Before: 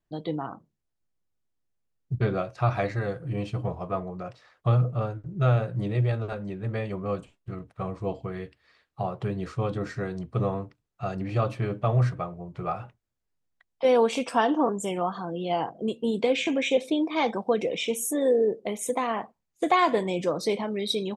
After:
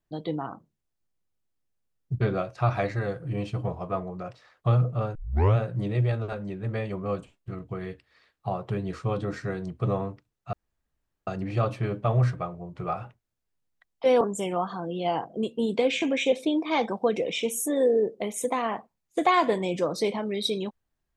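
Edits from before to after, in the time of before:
0:05.15: tape start 0.41 s
0:07.69–0:08.22: remove
0:11.06: splice in room tone 0.74 s
0:14.00–0:14.66: remove

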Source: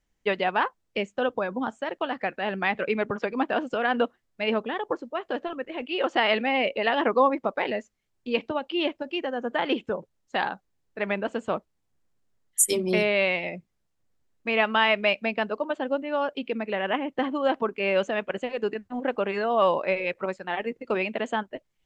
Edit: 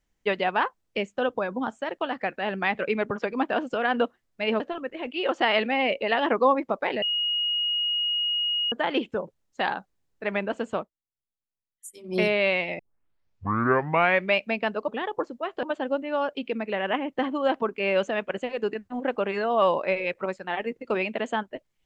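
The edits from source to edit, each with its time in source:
0:04.60–0:05.35: move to 0:15.63
0:07.77–0:09.47: beep over 2,880 Hz −23 dBFS
0:11.49–0:12.94: duck −22.5 dB, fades 0.16 s
0:13.54: tape start 1.58 s

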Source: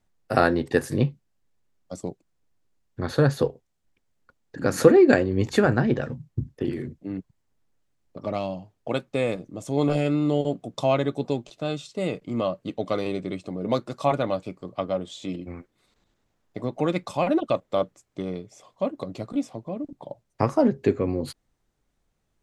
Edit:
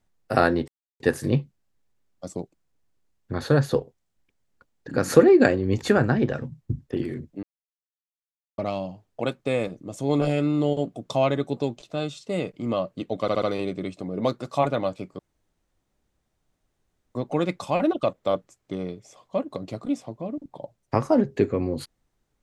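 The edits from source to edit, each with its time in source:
0:00.68: splice in silence 0.32 s
0:07.11–0:08.26: silence
0:12.89: stutter 0.07 s, 4 plays
0:14.66–0:16.62: fill with room tone

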